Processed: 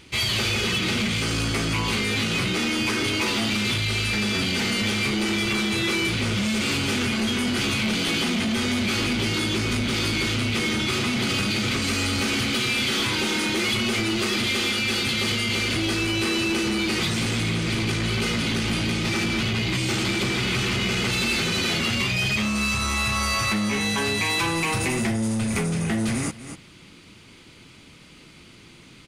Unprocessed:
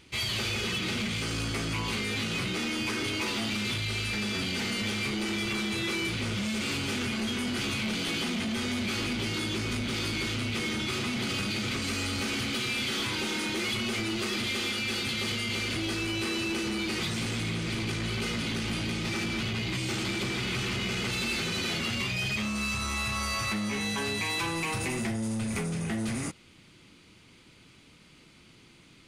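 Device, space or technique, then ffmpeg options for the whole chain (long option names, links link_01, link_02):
ducked delay: -filter_complex "[0:a]asplit=3[link_01][link_02][link_03];[link_02]adelay=242,volume=-8dB[link_04];[link_03]apad=whole_len=1292883[link_05];[link_04][link_05]sidechaincompress=threshold=-47dB:ratio=8:attack=16:release=227[link_06];[link_01][link_06]amix=inputs=2:normalize=0,volume=7dB"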